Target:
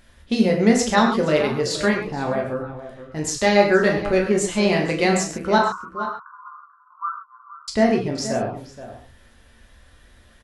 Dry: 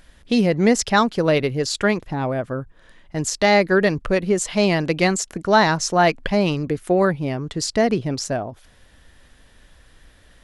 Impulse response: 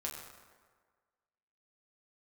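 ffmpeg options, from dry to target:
-filter_complex "[0:a]asettb=1/sr,asplit=3[link_01][link_02][link_03];[link_01]atrim=end=5.584[link_04];[link_02]atrim=start=5.58:end=7.68,asetpts=PTS-STARTPTS,afade=type=in:duration=0.004:curve=qsin,afade=type=out:start_time=2.096:duration=0.004:curve=qsin,asuperpass=centerf=1200:order=12:qfactor=2.7[link_05];[link_03]atrim=start=7.676[link_06];[link_04][link_05]acrossfade=duration=0.004:curve1=hsin:curve2=qsin[link_07];[link_07][link_06]acrossfade=duration=0.004:curve1=qsin:curve2=hsin,asplit=2[link_08][link_09];[link_09]adelay=472.3,volume=-13dB,highshelf=frequency=4000:gain=-10.6[link_10];[link_08][link_10]amix=inputs=2:normalize=0[link_11];[1:a]atrim=start_sample=2205,afade=type=out:start_time=0.19:duration=0.01,atrim=end_sample=8820[link_12];[link_11][link_12]afir=irnorm=-1:irlink=0"

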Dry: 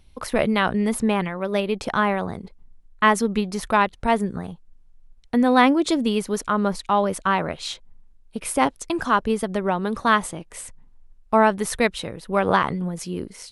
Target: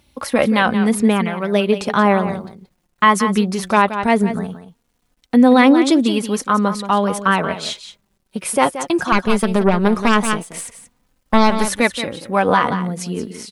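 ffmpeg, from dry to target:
ffmpeg -i in.wav -filter_complex "[0:a]highpass=93,asettb=1/sr,asplit=3[link_01][link_02][link_03];[link_01]atrim=end=9.124[link_04];[link_02]atrim=start=9.12:end=11.66,asetpts=PTS-STARTPTS,afade=type=in:duration=0.004:curve=qsin,afade=type=out:start_time=2.536:duration=0.004:curve=qsin,aeval=exprs='0.596*(cos(1*acos(clip(val(0)/0.596,-1,1)))-cos(1*PI/2))+0.168*(cos(4*acos(clip(val(0)/0.596,-1,1)))-cos(4*PI/2))+0.0266*(cos(5*acos(clip(val(0)/0.596,-1,1)))-cos(5*PI/2))':channel_layout=same[link_05];[link_03]atrim=start=11.656[link_06];[link_04][link_05]acrossfade=duration=0.004:curve1=hsin:curve2=qsin[link_07];[link_07][link_06]acrossfade=duration=0.004:curve1=qsin:curve2=hsin,acrusher=bits=11:mix=0:aa=0.000001,flanger=delay=3.4:depth=2.3:regen=38:speed=0.17:shape=triangular,aecho=1:1:177:0.266,alimiter=level_in=10dB:limit=-1dB:release=50:level=0:latency=1,volume=-1dB" out.wav

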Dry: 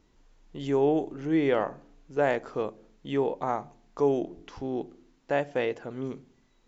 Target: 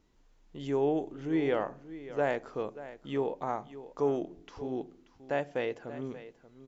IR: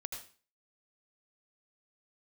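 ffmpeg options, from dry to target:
-af "aecho=1:1:583:0.178,volume=-4.5dB"

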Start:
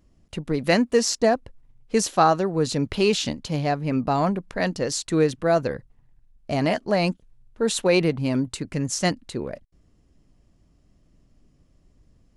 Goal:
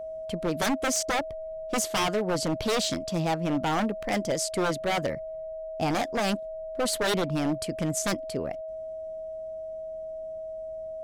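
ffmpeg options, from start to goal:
ffmpeg -i in.wav -af "aeval=exprs='0.119*(abs(mod(val(0)/0.119+3,4)-2)-1)':channel_layout=same,aeval=exprs='val(0)+0.0251*sin(2*PI*570*n/s)':channel_layout=same,asetrate=49392,aresample=44100,volume=-2dB" out.wav

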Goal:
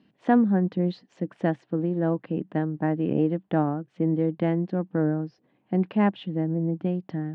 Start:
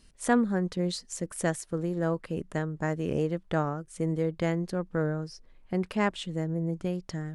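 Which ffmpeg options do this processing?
ffmpeg -i in.wav -af "highpass=frequency=120:width=0.5412,highpass=frequency=120:width=1.3066,equalizer=frequency=130:width_type=q:width=4:gain=5,equalizer=frequency=200:width_type=q:width=4:gain=7,equalizer=frequency=300:width_type=q:width=4:gain=10,equalizer=frequency=760:width_type=q:width=4:gain=6,equalizer=frequency=1300:width_type=q:width=4:gain=-5,equalizer=frequency=2200:width_type=q:width=4:gain=-4,lowpass=frequency=3100:width=0.5412,lowpass=frequency=3100:width=1.3066" out.wav

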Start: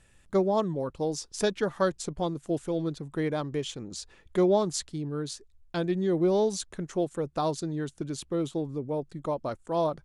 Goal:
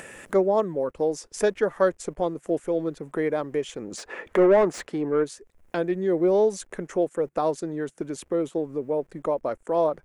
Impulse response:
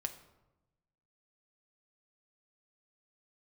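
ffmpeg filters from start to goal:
-filter_complex "[0:a]asplit=3[link_01][link_02][link_03];[link_01]afade=type=out:start_time=3.97:duration=0.02[link_04];[link_02]asplit=2[link_05][link_06];[link_06]highpass=frequency=720:poles=1,volume=21dB,asoftclip=type=tanh:threshold=-14.5dB[link_07];[link_05][link_07]amix=inputs=2:normalize=0,lowpass=frequency=1300:poles=1,volume=-6dB,afade=type=in:start_time=3.97:duration=0.02,afade=type=out:start_time=5.23:duration=0.02[link_08];[link_03]afade=type=in:start_time=5.23:duration=0.02[link_09];[link_04][link_08][link_09]amix=inputs=3:normalize=0,acrossover=split=110[link_10][link_11];[link_10]aeval=exprs='val(0)*gte(abs(val(0)),0.00133)':channel_layout=same[link_12];[link_11]acompressor=mode=upward:threshold=-28dB:ratio=2.5[link_13];[link_12][link_13]amix=inputs=2:normalize=0,equalizer=frequency=125:width_type=o:width=1:gain=-8,equalizer=frequency=500:width_type=o:width=1:gain=7,equalizer=frequency=2000:width_type=o:width=1:gain=6,equalizer=frequency=4000:width_type=o:width=1:gain=-9"

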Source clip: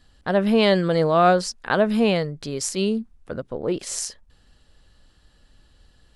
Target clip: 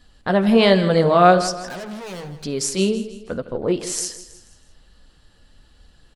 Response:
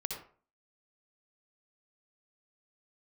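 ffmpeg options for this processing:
-filter_complex "[0:a]asplit=3[link_01][link_02][link_03];[link_01]afade=type=out:start_time=1.62:duration=0.02[link_04];[link_02]aeval=exprs='(tanh(56.2*val(0)+0.15)-tanh(0.15))/56.2':channel_layout=same,afade=type=in:start_time=1.62:duration=0.02,afade=type=out:start_time=2.43:duration=0.02[link_05];[link_03]afade=type=in:start_time=2.43:duration=0.02[link_06];[link_04][link_05][link_06]amix=inputs=3:normalize=0,flanger=delay=4:depth=7.2:regen=-43:speed=1.2:shape=sinusoidal,aecho=1:1:161|322|483|644:0.2|0.0838|0.0352|0.0148,asplit=2[link_07][link_08];[1:a]atrim=start_sample=2205[link_09];[link_08][link_09]afir=irnorm=-1:irlink=0,volume=-16.5dB[link_10];[link_07][link_10]amix=inputs=2:normalize=0,volume=6dB"

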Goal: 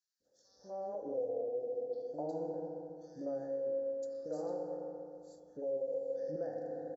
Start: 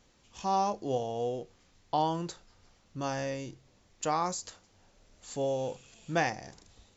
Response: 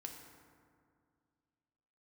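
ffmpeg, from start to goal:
-filter_complex "[0:a]asplit=3[link_01][link_02][link_03];[link_01]bandpass=frequency=530:width_type=q:width=8,volume=0dB[link_04];[link_02]bandpass=frequency=1840:width_type=q:width=8,volume=-6dB[link_05];[link_03]bandpass=frequency=2480:width_type=q:width=8,volume=-9dB[link_06];[link_04][link_05][link_06]amix=inputs=3:normalize=0[link_07];[1:a]atrim=start_sample=2205[link_08];[link_07][link_08]afir=irnorm=-1:irlink=0,asplit=2[link_09][link_10];[link_10]acompressor=threshold=-51dB:ratio=6,volume=-1dB[link_11];[link_09][link_11]amix=inputs=2:normalize=0,alimiter=level_in=13dB:limit=-24dB:level=0:latency=1:release=340,volume=-13dB,acrossover=split=500|700[link_12][link_13][link_14];[link_12]dynaudnorm=framelen=450:gausssize=3:maxgain=9dB[link_15];[link_15][link_13][link_14]amix=inputs=3:normalize=0,asuperstop=centerf=2500:order=8:qfactor=0.79,equalizer=frequency=2300:width_type=o:width=0.8:gain=12,acrossover=split=390|2100[link_16][link_17][link_18];[link_16]adelay=200[link_19];[link_17]adelay=250[link_20];[link_19][link_20][link_18]amix=inputs=3:normalize=0,volume=4dB"

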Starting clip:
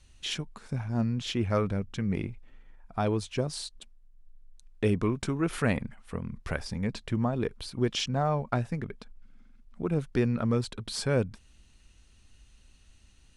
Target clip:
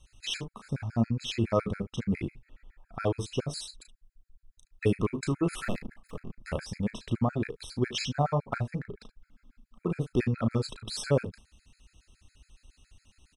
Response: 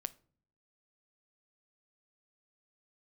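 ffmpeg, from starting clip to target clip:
-filter_complex "[0:a]asettb=1/sr,asplit=3[link_01][link_02][link_03];[link_01]atrim=end=5.614[link_04];[link_02]atrim=start=5.61:end=6.39,asetpts=PTS-STARTPTS,afade=type=in:duration=0.004:curve=qsin,afade=type=out:start_time=0.776:duration=0.004:curve=qsin,aeval=exprs='max(val(0),0)':channel_layout=same[link_05];[link_03]atrim=start=6.386[link_06];[link_04][link_05]acrossfade=duration=0.004:curve1=hsin:curve2=qsin[link_07];[link_07][link_06]acrossfade=duration=0.004:curve1=qsin:curve2=hsin,asettb=1/sr,asplit=3[link_08][link_09][link_10];[link_08]atrim=end=8.584[link_11];[link_09]atrim=start=8.58:end=9.01,asetpts=PTS-STARTPTS,afade=type=in:duration=0.004:curve=qsin,afade=type=out:start_time=0.426:duration=0.004:curve=qsin,highshelf=frequency=3300:gain=-6.5[link_12];[link_10]atrim=start=9.006[link_13];[link_11][link_12]acrossfade=duration=0.004:curve1=hsin:curve2=qsin[link_14];[link_14][link_13]acrossfade=duration=0.004:curve1=qsin:curve2=hsin,aecho=1:1:35|73:0.447|0.133,afftfilt=real='re*gt(sin(2*PI*7.2*pts/sr)*(1-2*mod(floor(b*sr/1024/1300),2)),0)':imag='im*gt(sin(2*PI*7.2*pts/sr)*(1-2*mod(floor(b*sr/1024/1300),2)),0)':win_size=1024:overlap=0.75,volume=1.5dB"

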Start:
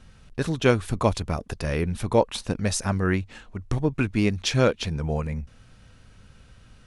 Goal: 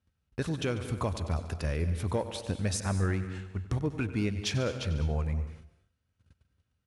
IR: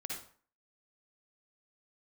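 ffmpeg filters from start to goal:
-filter_complex "[0:a]equalizer=frequency=82:width_type=o:width=0.44:gain=9.5,aecho=1:1:95|190|285|380|475:0.158|0.0888|0.0497|0.0278|0.0156,asplit=2[link_01][link_02];[link_02]asoftclip=type=hard:threshold=-17dB,volume=-5dB[link_03];[link_01][link_03]amix=inputs=2:normalize=0,agate=range=-25dB:threshold=-38dB:ratio=16:detection=peak,highpass=frequency=45:width=0.5412,highpass=frequency=45:width=1.3066,alimiter=limit=-12.5dB:level=0:latency=1:release=461,asplit=2[link_04][link_05];[link_05]equalizer=frequency=9600:width_type=o:width=0.31:gain=4[link_06];[1:a]atrim=start_sample=2205,afade=type=out:start_time=0.21:duration=0.01,atrim=end_sample=9702,adelay=144[link_07];[link_06][link_07]afir=irnorm=-1:irlink=0,volume=-12dB[link_08];[link_04][link_08]amix=inputs=2:normalize=0,volume=-8dB"

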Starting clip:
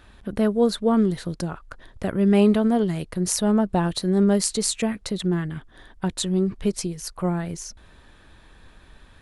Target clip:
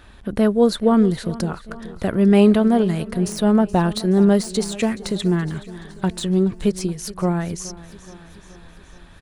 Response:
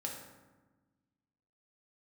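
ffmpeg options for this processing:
-filter_complex "[0:a]deesser=0.55,asplit=2[link_01][link_02];[link_02]aecho=0:1:424|848|1272|1696|2120:0.126|0.0743|0.0438|0.0259|0.0153[link_03];[link_01][link_03]amix=inputs=2:normalize=0,volume=4dB"

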